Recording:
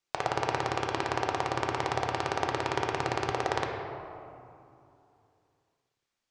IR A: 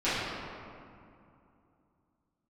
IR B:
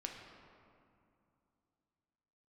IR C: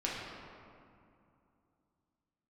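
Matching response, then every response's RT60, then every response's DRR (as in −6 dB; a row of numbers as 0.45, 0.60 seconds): B; 2.6, 2.6, 2.6 seconds; −15.0, 1.0, −6.0 decibels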